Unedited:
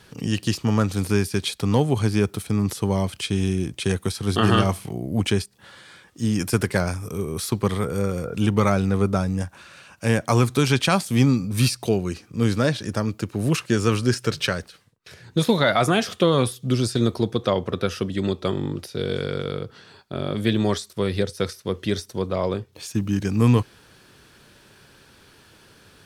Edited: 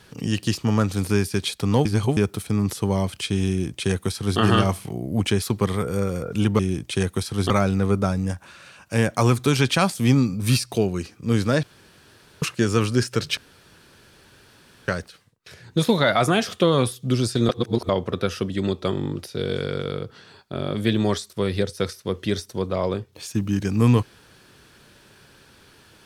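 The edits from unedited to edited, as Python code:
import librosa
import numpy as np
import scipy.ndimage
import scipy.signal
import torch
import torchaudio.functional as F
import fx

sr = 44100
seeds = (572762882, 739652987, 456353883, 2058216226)

y = fx.edit(x, sr, fx.reverse_span(start_s=1.85, length_s=0.32),
    fx.duplicate(start_s=3.48, length_s=0.91, to_s=8.61),
    fx.cut(start_s=5.42, length_s=2.02),
    fx.room_tone_fill(start_s=12.74, length_s=0.79),
    fx.insert_room_tone(at_s=14.48, length_s=1.51),
    fx.reverse_span(start_s=17.09, length_s=0.4), tone=tone)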